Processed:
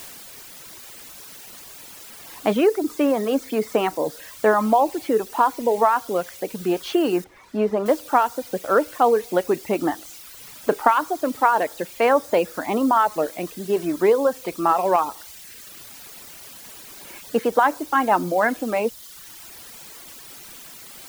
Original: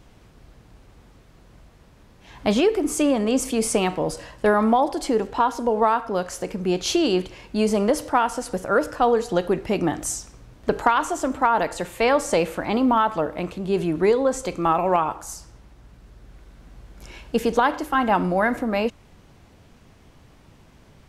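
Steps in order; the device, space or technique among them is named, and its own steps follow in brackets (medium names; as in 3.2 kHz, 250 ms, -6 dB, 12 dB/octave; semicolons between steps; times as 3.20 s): wax cylinder (band-pass 250–2300 Hz; wow and flutter; white noise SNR 17 dB); 7.24–7.86 s: low-pass 1.9 kHz 6 dB/octave; reverb removal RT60 1 s; trim +2.5 dB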